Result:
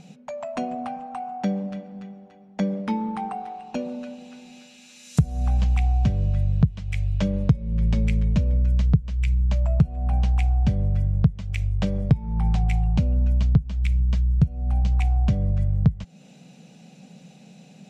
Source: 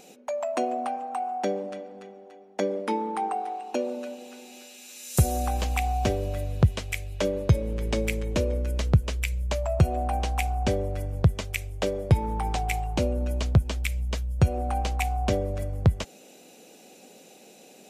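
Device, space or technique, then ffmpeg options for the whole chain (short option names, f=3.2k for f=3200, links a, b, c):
jukebox: -filter_complex "[0:a]lowpass=5.7k,lowshelf=f=240:t=q:w=3:g=13,acompressor=threshold=-17dB:ratio=4,asettb=1/sr,asplit=3[a][b][c];[a]atrim=end=14.374[d];[b]atrim=start=14.37:end=14.92,asetpts=PTS-STARTPTS,afade=t=in:d=0.004:c=qsin,afade=t=out:st=0.546:d=0.004:c=qsin,equalizer=f=1.2k:w=0.47:g=-5.5[e];[c]atrim=start=14.916[f];[d][e]acrossfade=d=0.004:c1=hsin:c2=qsin[g];[g][f]acrossfade=d=0.004:c1=qsin:c2=hsin,volume=-1dB"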